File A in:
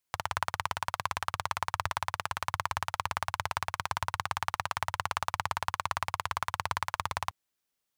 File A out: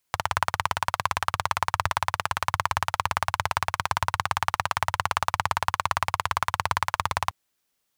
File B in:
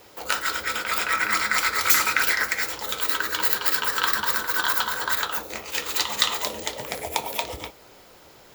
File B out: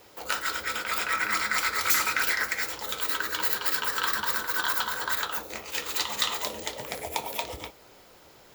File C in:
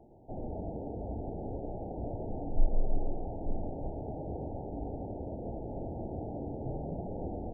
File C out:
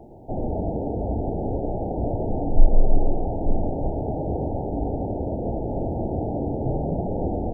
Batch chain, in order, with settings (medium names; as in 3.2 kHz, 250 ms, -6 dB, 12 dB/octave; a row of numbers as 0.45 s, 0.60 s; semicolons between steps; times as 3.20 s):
saturation -9 dBFS; normalise loudness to -27 LUFS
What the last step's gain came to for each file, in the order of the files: +7.5 dB, -3.5 dB, +12.5 dB